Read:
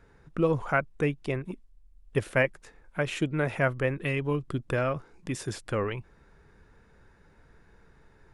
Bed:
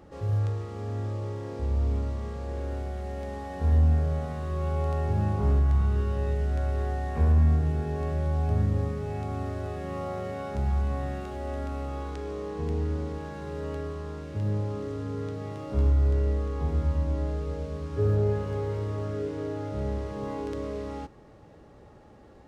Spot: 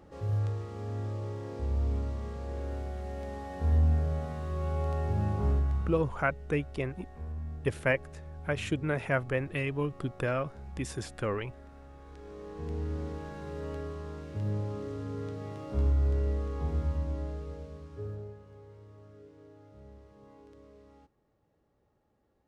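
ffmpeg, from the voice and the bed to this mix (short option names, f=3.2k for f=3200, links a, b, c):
-filter_complex "[0:a]adelay=5500,volume=-3dB[a];[1:a]volume=10.5dB,afade=t=out:st=5.45:d=0.68:silence=0.188365,afade=t=in:st=11.99:d=1.09:silence=0.199526,afade=t=out:st=16.74:d=1.62:silence=0.133352[b];[a][b]amix=inputs=2:normalize=0"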